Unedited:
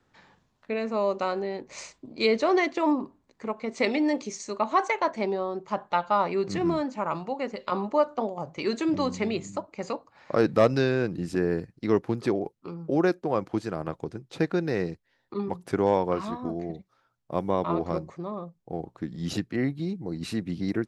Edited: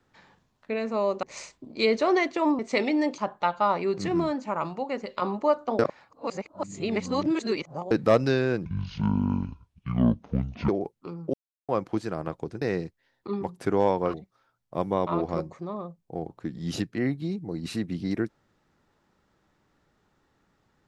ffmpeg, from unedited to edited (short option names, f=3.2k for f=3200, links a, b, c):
-filter_complex "[0:a]asplit=12[a][b][c][d][e][f][g][h][i][j][k][l];[a]atrim=end=1.232[m];[b]atrim=start=1.638:end=3.002[n];[c]atrim=start=3.658:end=4.252[o];[d]atrim=start=5.678:end=8.292[p];[e]atrim=start=8.288:end=10.412,asetpts=PTS-STARTPTS,areverse[q];[f]atrim=start=10.408:end=11.154[r];[g]atrim=start=11.15:end=12.29,asetpts=PTS-STARTPTS,asetrate=24696,aresample=44100[s];[h]atrim=start=12.286:end=12.94,asetpts=PTS-STARTPTS,afade=t=out:st=0.65:d=0.004:c=hsin[t];[i]atrim=start=12.94:end=13.29,asetpts=PTS-STARTPTS,volume=0[u];[j]atrim=start=13.29:end=14.222,asetpts=PTS-STARTPTS,afade=t=in:d=0.004:c=hsin[v];[k]atrim=start=14.678:end=16.202[w];[l]atrim=start=16.708[x];[m][n]acrossfade=d=0.004:c1=hsin:c2=hsin[y];[y][o]acrossfade=d=0.004:c1=hsin:c2=hsin[z];[z][p]acrossfade=d=0.004:c1=hsin:c2=hsin[aa];[aa][q]acrossfade=d=0.004:c1=hsin:c2=hsin[ab];[ab][r]acrossfade=d=0.004:c1=hsin:c2=hsin[ac];[ac][s]acrossfade=d=0.004:c1=hsin:c2=hsin[ad];[t][u][v]concat=n=3:v=0:a=1[ae];[ad][ae]acrossfade=d=0.004:c1=hsin:c2=hsin[af];[af][w]acrossfade=d=0.004:c1=hsin:c2=hsin[ag];[ag][x]acrossfade=d=0.004:c1=hsin:c2=hsin"